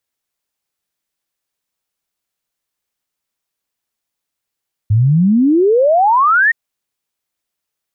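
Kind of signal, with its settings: log sweep 100 Hz -> 1.9 kHz 1.62 s -8 dBFS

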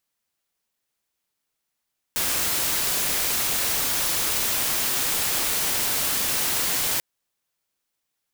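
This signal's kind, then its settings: noise white, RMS -24 dBFS 4.84 s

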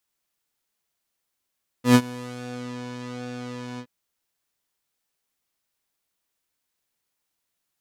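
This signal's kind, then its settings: synth patch with pulse-width modulation B3, detune 10 cents, sub -6.5 dB, filter lowpass, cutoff 3.9 kHz, Q 0.85, filter envelope 2 oct, filter decay 0.89 s, attack 109 ms, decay 0.06 s, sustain -22 dB, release 0.07 s, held 1.95 s, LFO 1.2 Hz, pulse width 31%, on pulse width 7%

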